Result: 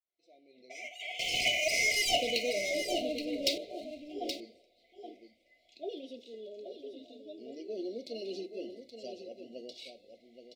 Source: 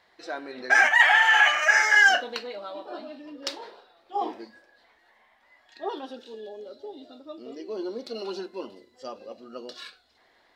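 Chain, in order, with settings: fade-in on the opening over 3.18 s; 1.19–3.58 s: waveshaping leveller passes 3; brick-wall FIR band-stop 740–2000 Hz; delay 824 ms -8.5 dB; trim -5.5 dB

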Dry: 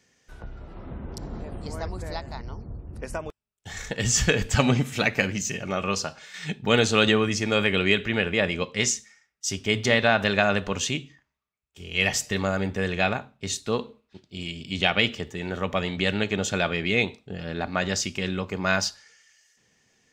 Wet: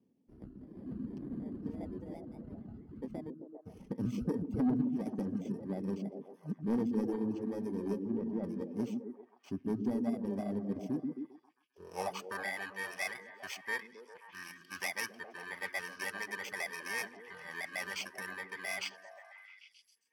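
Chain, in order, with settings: bit-reversed sample order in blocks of 32 samples; band-pass sweep 260 Hz -> 1.8 kHz, 11.45–12.51 s; in parallel at +1 dB: gain riding within 4 dB 0.5 s; on the sum: saturation -19 dBFS, distortion -16 dB; reverb removal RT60 1.9 s; 8.03–8.44 s: tape spacing loss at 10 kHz 31 dB; on a send: repeats whose band climbs or falls 133 ms, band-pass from 220 Hz, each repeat 0.7 oct, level -2 dB; on the sum: trim -5 dB

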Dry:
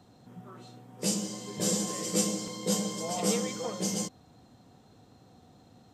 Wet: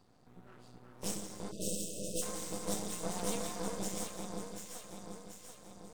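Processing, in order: on a send: echo whose repeats swap between lows and highs 368 ms, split 1.4 kHz, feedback 73%, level -3 dB; on the sum: formant shift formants +2 st; half-wave rectifier; spectral selection erased 1.52–2.22 s, 670–2500 Hz; trim -5 dB

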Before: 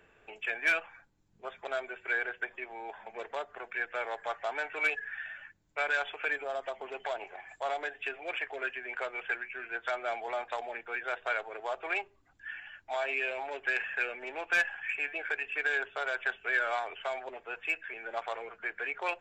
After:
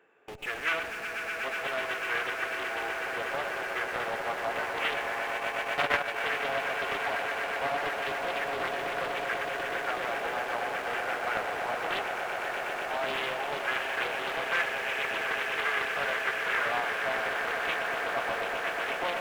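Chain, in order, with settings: high-pass 330 Hz 12 dB/octave; treble shelf 2.3 kHz -11 dB; band-stop 620 Hz, Q 12; echo with a slow build-up 123 ms, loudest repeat 8, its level -9.5 dB; in parallel at -10.5 dB: Schmitt trigger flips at -48.5 dBFS; on the sum: reverberation, pre-delay 93 ms, DRR 10.5 dB; 5.34–6.22 s: transient shaper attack +8 dB, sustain -11 dB; loudspeaker Doppler distortion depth 0.54 ms; trim +1.5 dB

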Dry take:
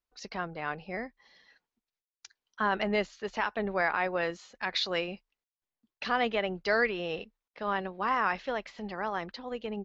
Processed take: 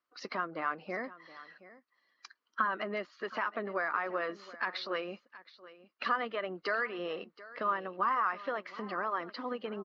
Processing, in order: coarse spectral quantiser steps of 15 dB; compression 4:1, threshold -39 dBFS, peak gain reduction 14 dB; cabinet simulation 300–4300 Hz, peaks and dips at 300 Hz +4 dB, 430 Hz -4 dB, 800 Hz -6 dB, 1.2 kHz +9 dB, 2.5 kHz -6 dB, 3.6 kHz -9 dB; band-stop 830 Hz, Q 17; on a send: delay 722 ms -18 dB; on the sum: trim +8 dB; MP3 56 kbps 32 kHz

